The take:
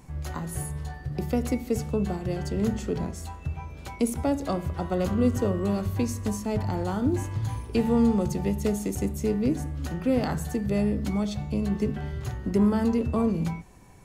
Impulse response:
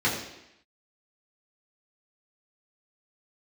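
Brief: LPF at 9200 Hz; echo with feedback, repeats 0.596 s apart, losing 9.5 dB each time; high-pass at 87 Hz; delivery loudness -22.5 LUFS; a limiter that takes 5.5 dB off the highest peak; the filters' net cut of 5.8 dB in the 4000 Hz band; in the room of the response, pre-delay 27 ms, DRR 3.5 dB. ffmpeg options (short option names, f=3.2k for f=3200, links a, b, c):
-filter_complex "[0:a]highpass=87,lowpass=9.2k,equalizer=f=4k:t=o:g=-7.5,alimiter=limit=-18.5dB:level=0:latency=1,aecho=1:1:596|1192|1788|2384:0.335|0.111|0.0365|0.012,asplit=2[a][b];[1:a]atrim=start_sample=2205,adelay=27[c];[b][c]afir=irnorm=-1:irlink=0,volume=-17dB[d];[a][d]amix=inputs=2:normalize=0,volume=4dB"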